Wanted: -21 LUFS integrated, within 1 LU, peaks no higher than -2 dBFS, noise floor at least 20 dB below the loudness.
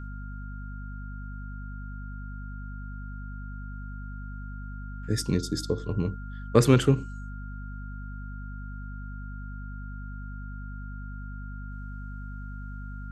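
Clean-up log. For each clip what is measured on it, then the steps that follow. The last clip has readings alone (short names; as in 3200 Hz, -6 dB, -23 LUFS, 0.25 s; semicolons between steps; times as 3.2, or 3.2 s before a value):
hum 50 Hz; harmonics up to 250 Hz; hum level -35 dBFS; steady tone 1400 Hz; tone level -46 dBFS; loudness -32.5 LUFS; peak -5.0 dBFS; loudness target -21.0 LUFS
-> de-hum 50 Hz, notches 5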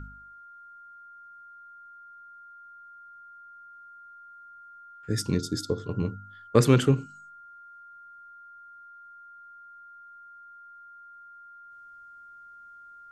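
hum none; steady tone 1400 Hz; tone level -46 dBFS
-> notch 1400 Hz, Q 30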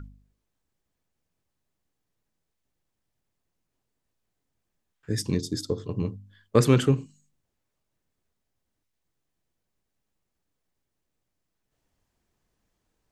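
steady tone none; loudness -26.0 LUFS; peak -5.5 dBFS; loudness target -21.0 LUFS
-> gain +5 dB; limiter -2 dBFS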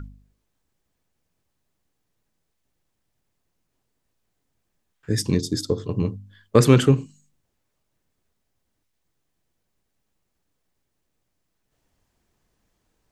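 loudness -21.0 LUFS; peak -2.0 dBFS; noise floor -76 dBFS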